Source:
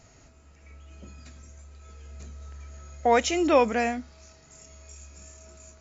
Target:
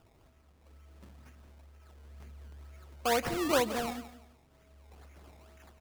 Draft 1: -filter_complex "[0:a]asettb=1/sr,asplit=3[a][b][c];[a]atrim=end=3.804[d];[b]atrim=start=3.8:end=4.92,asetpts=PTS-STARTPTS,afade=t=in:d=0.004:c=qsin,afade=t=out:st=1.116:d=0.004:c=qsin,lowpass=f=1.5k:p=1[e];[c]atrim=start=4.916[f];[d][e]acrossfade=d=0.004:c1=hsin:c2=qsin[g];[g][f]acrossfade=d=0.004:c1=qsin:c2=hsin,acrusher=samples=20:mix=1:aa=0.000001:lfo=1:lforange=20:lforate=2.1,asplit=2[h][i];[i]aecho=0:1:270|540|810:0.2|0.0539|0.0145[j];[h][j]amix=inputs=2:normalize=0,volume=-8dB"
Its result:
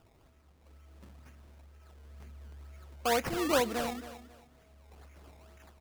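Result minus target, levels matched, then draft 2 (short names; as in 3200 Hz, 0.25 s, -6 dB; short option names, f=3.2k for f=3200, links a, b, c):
echo 98 ms late
-filter_complex "[0:a]asettb=1/sr,asplit=3[a][b][c];[a]atrim=end=3.804[d];[b]atrim=start=3.8:end=4.92,asetpts=PTS-STARTPTS,afade=t=in:d=0.004:c=qsin,afade=t=out:st=1.116:d=0.004:c=qsin,lowpass=f=1.5k:p=1[e];[c]atrim=start=4.916[f];[d][e]acrossfade=d=0.004:c1=hsin:c2=qsin[g];[g][f]acrossfade=d=0.004:c1=qsin:c2=hsin,acrusher=samples=20:mix=1:aa=0.000001:lfo=1:lforange=20:lforate=2.1,asplit=2[h][i];[i]aecho=0:1:172|344|516:0.2|0.0539|0.0145[j];[h][j]amix=inputs=2:normalize=0,volume=-8dB"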